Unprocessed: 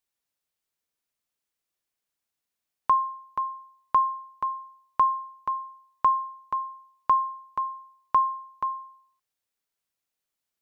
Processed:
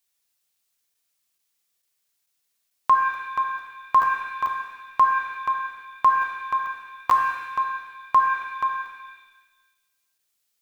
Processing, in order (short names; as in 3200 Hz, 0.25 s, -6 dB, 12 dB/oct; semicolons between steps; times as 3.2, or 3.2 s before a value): high shelf 2000 Hz +10.5 dB; crackling interface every 0.44 s, samples 512, zero, from 0.94; shimmer reverb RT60 1.2 s, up +7 st, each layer -8 dB, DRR 3.5 dB